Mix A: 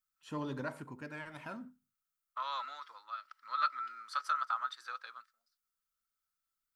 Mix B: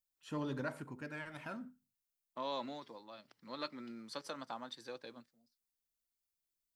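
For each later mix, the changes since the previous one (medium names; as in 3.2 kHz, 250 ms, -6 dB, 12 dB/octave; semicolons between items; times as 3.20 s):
first voice: add peaking EQ 1 kHz -4 dB 0.4 oct; second voice: remove resonant high-pass 1.3 kHz, resonance Q 15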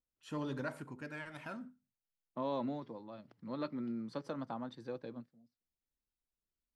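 second voice: add tilt EQ -4.5 dB/octave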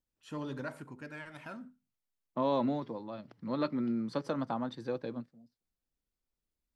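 second voice +7.0 dB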